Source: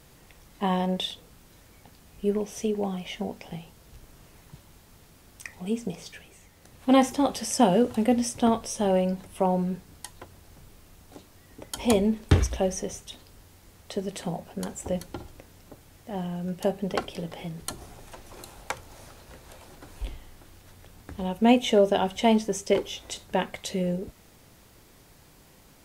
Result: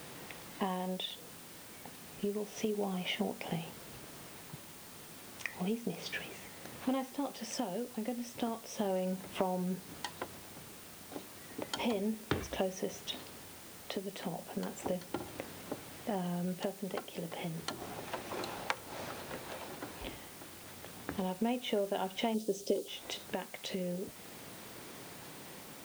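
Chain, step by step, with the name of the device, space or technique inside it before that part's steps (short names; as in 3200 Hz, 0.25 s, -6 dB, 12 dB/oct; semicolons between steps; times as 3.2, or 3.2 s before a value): medium wave at night (BPF 170–4000 Hz; compressor 6:1, threshold -40 dBFS, peak gain reduction 24 dB; tremolo 0.32 Hz, depth 42%; whine 9000 Hz -71 dBFS; white noise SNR 14 dB); 22.34–22.88 graphic EQ 125/250/500/1000/2000/4000/8000 Hz -4/+4/+6/-10/-12/+4/+3 dB; gain +8 dB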